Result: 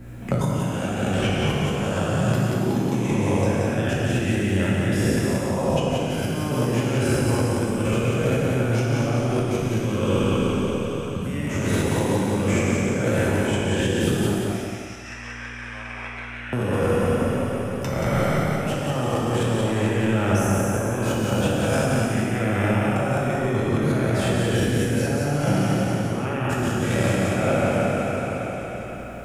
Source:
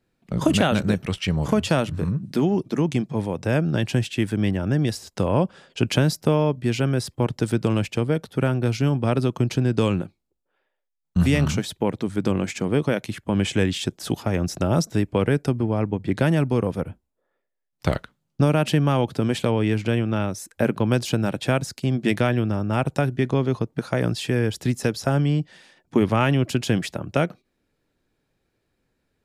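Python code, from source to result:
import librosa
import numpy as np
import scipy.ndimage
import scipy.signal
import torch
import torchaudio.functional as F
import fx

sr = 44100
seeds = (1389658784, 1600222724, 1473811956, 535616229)

y = fx.spec_trails(x, sr, decay_s=2.51)
y = fx.peak_eq(y, sr, hz=4300.0, db=-12.0, octaves=0.69)
y = fx.over_compress(y, sr, threshold_db=-23.0, ratio=-0.5)
y = fx.ladder_bandpass(y, sr, hz=2900.0, resonance_pct=30, at=(14.34, 16.53))
y = fx.add_hum(y, sr, base_hz=60, snr_db=30)
y = fx.echo_feedback(y, sr, ms=179, feedback_pct=28, wet_db=-4.5)
y = fx.rev_gated(y, sr, seeds[0], gate_ms=430, shape='falling', drr_db=-3.0)
y = fx.band_squash(y, sr, depth_pct=70)
y = y * librosa.db_to_amplitude(-5.0)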